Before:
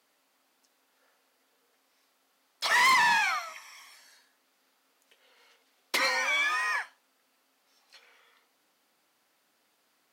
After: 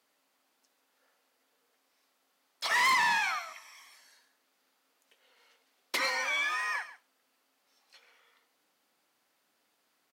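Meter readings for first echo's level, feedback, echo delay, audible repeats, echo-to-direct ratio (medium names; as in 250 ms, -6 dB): -16.0 dB, no regular repeats, 138 ms, 1, -16.0 dB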